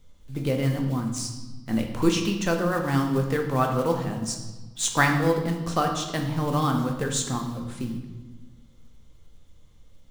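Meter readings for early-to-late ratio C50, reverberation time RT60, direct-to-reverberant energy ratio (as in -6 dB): 6.5 dB, 1.2 s, 2.5 dB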